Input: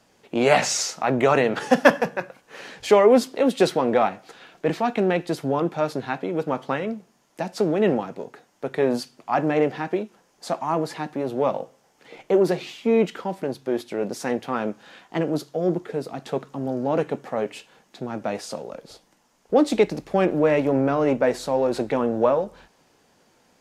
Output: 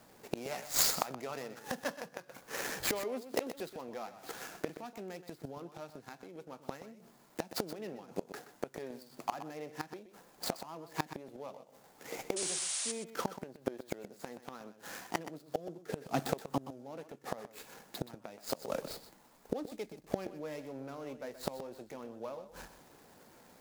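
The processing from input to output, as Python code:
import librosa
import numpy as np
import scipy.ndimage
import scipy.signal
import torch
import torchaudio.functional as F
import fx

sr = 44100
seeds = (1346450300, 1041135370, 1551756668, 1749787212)

p1 = scipy.signal.medfilt(x, 15)
p2 = fx.spec_paint(p1, sr, seeds[0], shape='noise', start_s=12.36, length_s=0.56, low_hz=500.0, high_hz=9900.0, level_db=-24.0)
p3 = fx.gate_flip(p2, sr, shuts_db=-21.0, range_db=-25)
p4 = F.preemphasis(torch.from_numpy(p3), 0.8).numpy()
p5 = p4 + fx.echo_single(p4, sr, ms=125, db=-12.5, dry=0)
y = p5 * librosa.db_to_amplitude(15.0)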